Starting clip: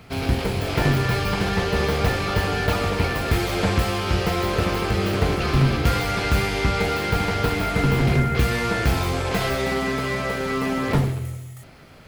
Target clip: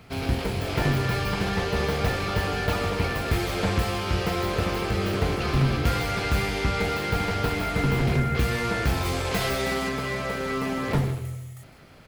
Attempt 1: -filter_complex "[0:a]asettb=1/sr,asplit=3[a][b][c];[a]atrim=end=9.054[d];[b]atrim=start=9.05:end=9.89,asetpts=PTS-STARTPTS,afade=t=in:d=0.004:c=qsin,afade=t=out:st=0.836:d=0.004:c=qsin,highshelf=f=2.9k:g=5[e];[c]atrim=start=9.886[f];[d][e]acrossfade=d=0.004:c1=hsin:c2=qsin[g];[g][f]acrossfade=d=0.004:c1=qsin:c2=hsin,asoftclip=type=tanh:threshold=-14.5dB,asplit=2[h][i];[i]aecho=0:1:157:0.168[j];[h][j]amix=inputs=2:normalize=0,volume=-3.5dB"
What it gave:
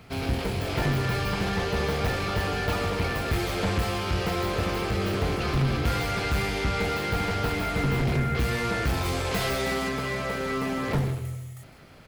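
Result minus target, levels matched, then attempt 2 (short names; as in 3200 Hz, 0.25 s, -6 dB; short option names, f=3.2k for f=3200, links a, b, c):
soft clip: distortion +18 dB
-filter_complex "[0:a]asettb=1/sr,asplit=3[a][b][c];[a]atrim=end=9.054[d];[b]atrim=start=9.05:end=9.89,asetpts=PTS-STARTPTS,afade=t=in:d=0.004:c=qsin,afade=t=out:st=0.836:d=0.004:c=qsin,highshelf=f=2.9k:g=5[e];[c]atrim=start=9.886[f];[d][e]acrossfade=d=0.004:c1=hsin:c2=qsin[g];[g][f]acrossfade=d=0.004:c1=qsin:c2=hsin,asoftclip=type=tanh:threshold=-3.5dB,asplit=2[h][i];[i]aecho=0:1:157:0.168[j];[h][j]amix=inputs=2:normalize=0,volume=-3.5dB"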